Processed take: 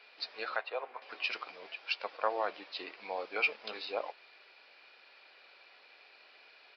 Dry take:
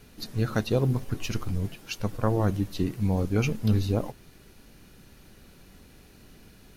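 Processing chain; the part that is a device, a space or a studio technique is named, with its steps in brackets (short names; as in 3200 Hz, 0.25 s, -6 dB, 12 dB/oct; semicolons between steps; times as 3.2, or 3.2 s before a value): 0.56–1.02 three-band isolator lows -18 dB, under 520 Hz, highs -21 dB, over 2500 Hz; musical greeting card (downsampling 11025 Hz; HPF 580 Hz 24 dB/oct; bell 2400 Hz +8 dB 0.24 oct)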